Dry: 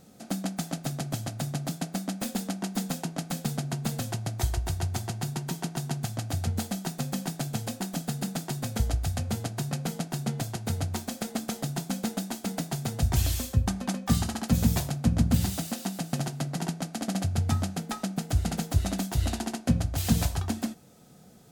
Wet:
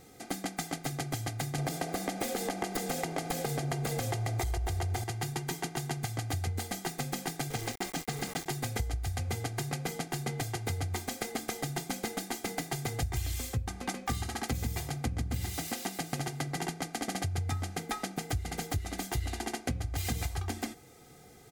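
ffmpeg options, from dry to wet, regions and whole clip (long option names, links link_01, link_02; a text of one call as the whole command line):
ffmpeg -i in.wav -filter_complex "[0:a]asettb=1/sr,asplit=3[link_01][link_02][link_03];[link_01]atrim=end=1.584[link_04];[link_02]atrim=start=1.58:end=5.04,asetpts=PTS-STARTPTS,afade=type=in:duration=0.004:curve=qsin,afade=type=out:start_time=3.456:duration=0.004:curve=qsin,equalizer=frequency=570:width=1.5:gain=8.5,acompressor=threshold=-32dB:ratio=3:attack=3.2:release=140:knee=1:detection=peak,aeval=exprs='0.0944*sin(PI/2*2*val(0)/0.0944)':channel_layout=same[link_05];[link_03]atrim=start=5.036[link_06];[link_04][link_05]acrossfade=duration=0.004:curve1=hsin:curve2=qsin[link_07];[link_07][link_06]acrossfade=duration=0.004:curve1=qsin:curve2=hsin,asettb=1/sr,asplit=3[link_08][link_09][link_10];[link_08]atrim=end=7.504[link_11];[link_09]atrim=start=7.5:end=8.46,asetpts=PTS-STARTPTS,afade=type=in:duration=0.004:curve=qsin,afade=type=out:start_time=0.956:duration=0.004:curve=qsin,acrossover=split=9200[link_12][link_13];[link_13]acompressor=threshold=-52dB:ratio=4:attack=1:release=60[link_14];[link_12][link_14]amix=inputs=2:normalize=0,highpass=frequency=46:poles=1,aeval=exprs='val(0)*gte(abs(val(0)),0.015)':channel_layout=same[link_15];[link_10]atrim=start=8.456[link_16];[link_11][link_15]acrossfade=duration=0.004:curve1=hsin:curve2=qsin[link_17];[link_17][link_16]acrossfade=duration=0.004:curve1=qsin:curve2=hsin,equalizer=frequency=2100:width_type=o:width=0.25:gain=10.5,aecho=1:1:2.5:0.66,acompressor=threshold=-30dB:ratio=6" out.wav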